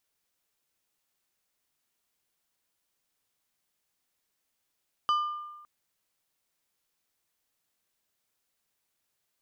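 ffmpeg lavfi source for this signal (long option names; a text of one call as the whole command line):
ffmpeg -f lavfi -i "aevalsrc='0.0891*pow(10,-3*t/1.18)*sin(2*PI*1200*t)+0.0266*pow(10,-3*t/0.621)*sin(2*PI*3000*t)+0.00794*pow(10,-3*t/0.447)*sin(2*PI*4800*t)+0.00237*pow(10,-3*t/0.382)*sin(2*PI*6000*t)+0.000708*pow(10,-3*t/0.318)*sin(2*PI*7800*t)':duration=0.56:sample_rate=44100" out.wav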